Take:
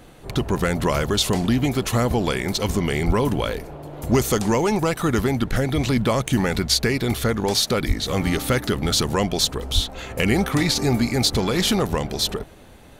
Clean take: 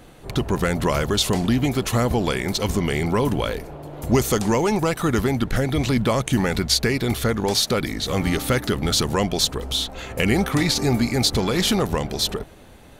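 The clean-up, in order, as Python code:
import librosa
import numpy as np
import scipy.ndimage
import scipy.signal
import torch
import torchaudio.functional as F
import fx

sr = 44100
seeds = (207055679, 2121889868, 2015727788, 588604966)

y = fx.fix_declip(x, sr, threshold_db=-8.5)
y = fx.highpass(y, sr, hz=140.0, slope=24, at=(3.06, 3.18), fade=0.02)
y = fx.highpass(y, sr, hz=140.0, slope=24, at=(7.87, 7.99), fade=0.02)
y = fx.highpass(y, sr, hz=140.0, slope=24, at=(9.74, 9.86), fade=0.02)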